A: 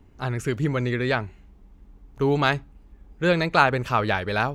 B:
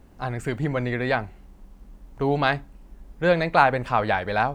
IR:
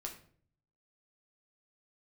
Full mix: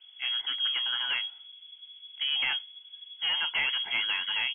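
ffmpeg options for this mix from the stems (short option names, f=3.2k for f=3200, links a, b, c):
-filter_complex "[0:a]lowpass=2.5k,aecho=1:1:1.6:0.72,asoftclip=type=tanh:threshold=-21dB,volume=-4dB[a];[1:a]acompressor=threshold=-26dB:ratio=6,volume=-1,adelay=24,volume=-12.5dB[b];[a][b]amix=inputs=2:normalize=0,lowpass=f=2.9k:t=q:w=0.5098,lowpass=f=2.9k:t=q:w=0.6013,lowpass=f=2.9k:t=q:w=0.9,lowpass=f=2.9k:t=q:w=2.563,afreqshift=-3400"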